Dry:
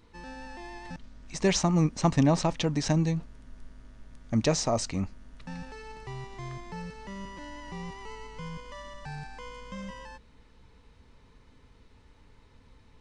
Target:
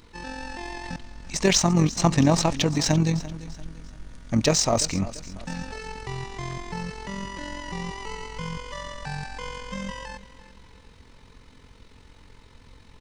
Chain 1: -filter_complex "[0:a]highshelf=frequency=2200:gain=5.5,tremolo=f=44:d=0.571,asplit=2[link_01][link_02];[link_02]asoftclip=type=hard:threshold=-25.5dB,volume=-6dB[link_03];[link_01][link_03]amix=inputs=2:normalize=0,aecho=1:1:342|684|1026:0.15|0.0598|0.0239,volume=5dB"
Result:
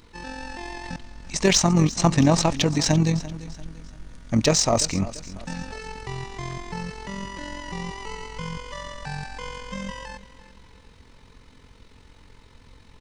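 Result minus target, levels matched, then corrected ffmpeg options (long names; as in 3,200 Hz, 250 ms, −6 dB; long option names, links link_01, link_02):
hard clipping: distortion −6 dB
-filter_complex "[0:a]highshelf=frequency=2200:gain=5.5,tremolo=f=44:d=0.571,asplit=2[link_01][link_02];[link_02]asoftclip=type=hard:threshold=-35dB,volume=-6dB[link_03];[link_01][link_03]amix=inputs=2:normalize=0,aecho=1:1:342|684|1026:0.15|0.0598|0.0239,volume=5dB"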